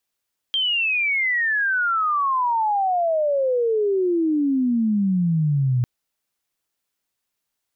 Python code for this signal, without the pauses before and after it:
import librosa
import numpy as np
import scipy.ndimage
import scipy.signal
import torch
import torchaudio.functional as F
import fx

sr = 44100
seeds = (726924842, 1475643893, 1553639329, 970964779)

y = fx.chirp(sr, length_s=5.3, from_hz=3200.0, to_hz=120.0, law='logarithmic', from_db=-18.5, to_db=-16.5)